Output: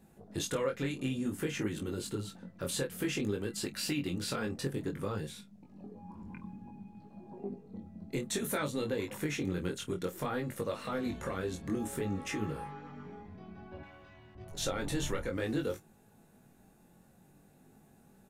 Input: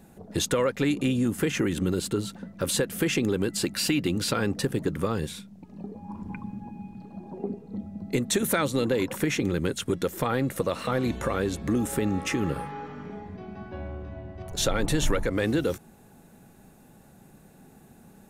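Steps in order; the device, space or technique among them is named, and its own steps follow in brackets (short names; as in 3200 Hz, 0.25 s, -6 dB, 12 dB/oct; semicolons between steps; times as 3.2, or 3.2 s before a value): double-tracked vocal (doubler 28 ms -12.5 dB; chorus 0.56 Hz, delay 19 ms, depth 3.5 ms); 13.83–14.35 tilt shelf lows -10 dB, about 930 Hz; gain -6 dB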